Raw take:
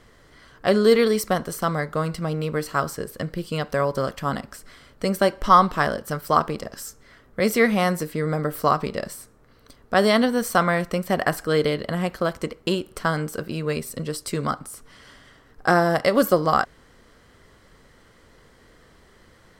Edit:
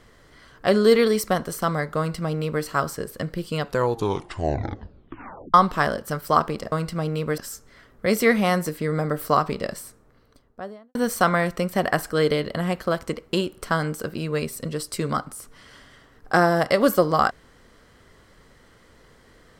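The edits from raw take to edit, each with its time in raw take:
1.98–2.64 s: copy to 6.72 s
3.60 s: tape stop 1.94 s
9.14–10.29 s: studio fade out

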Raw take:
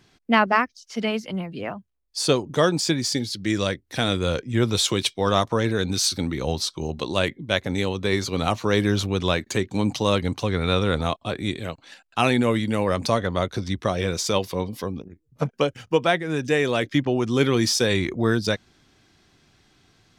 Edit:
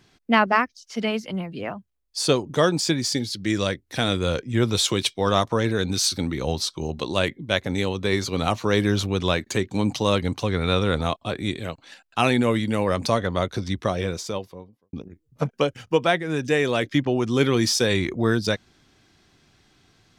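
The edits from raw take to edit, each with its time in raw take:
13.77–14.93 s: studio fade out

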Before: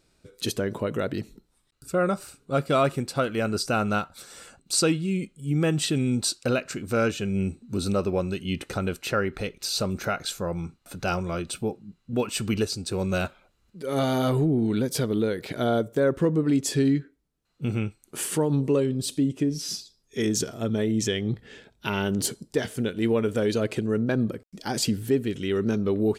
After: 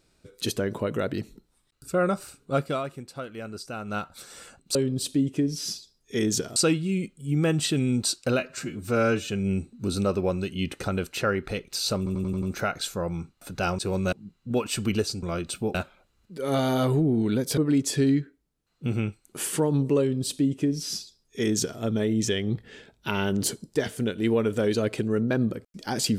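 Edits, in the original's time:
2.55–4.13 s: dip -11 dB, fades 0.28 s
6.58–7.17 s: stretch 1.5×
9.87 s: stutter 0.09 s, 6 plays
11.23–11.75 s: swap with 12.85–13.19 s
15.02–16.36 s: delete
18.78–20.59 s: copy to 4.75 s

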